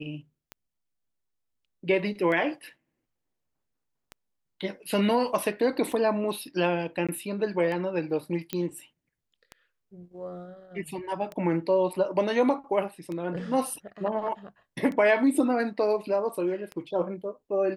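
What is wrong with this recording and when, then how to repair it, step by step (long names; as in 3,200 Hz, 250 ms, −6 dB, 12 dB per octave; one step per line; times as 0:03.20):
scratch tick 33 1/3 rpm −23 dBFS
0:07.07–0:07.09: drop-out 16 ms
0:08.53: click −15 dBFS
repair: click removal
repair the gap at 0:07.07, 16 ms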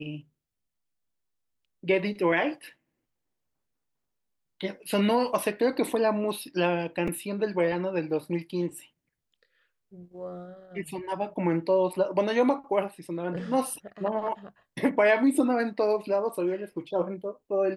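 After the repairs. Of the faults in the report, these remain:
none of them is left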